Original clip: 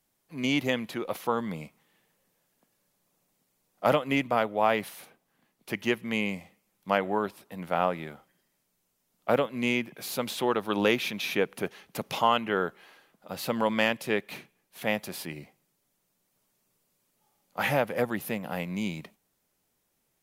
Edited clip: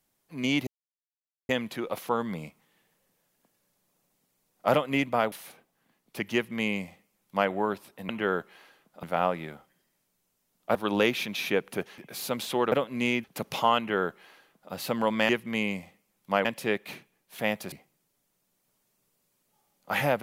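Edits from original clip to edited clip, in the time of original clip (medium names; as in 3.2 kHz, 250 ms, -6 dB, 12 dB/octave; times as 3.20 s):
0.67 s: insert silence 0.82 s
4.50–4.85 s: delete
5.87–7.03 s: copy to 13.88 s
9.34–9.86 s: swap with 10.60–11.83 s
12.37–13.31 s: copy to 7.62 s
15.15–15.40 s: delete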